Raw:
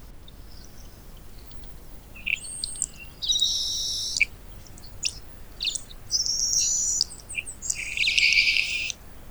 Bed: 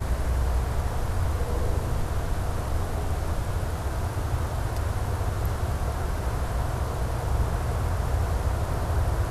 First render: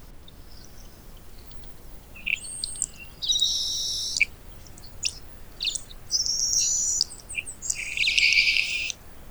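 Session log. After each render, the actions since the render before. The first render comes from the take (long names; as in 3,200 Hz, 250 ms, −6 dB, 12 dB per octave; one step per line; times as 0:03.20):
hum removal 50 Hz, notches 6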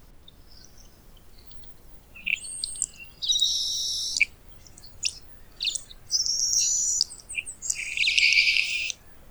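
noise reduction from a noise print 6 dB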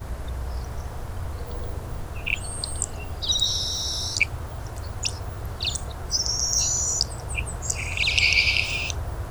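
mix in bed −6 dB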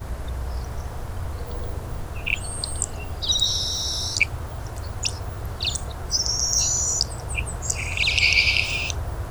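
level +1.5 dB
brickwall limiter −3 dBFS, peak gain reduction 2.5 dB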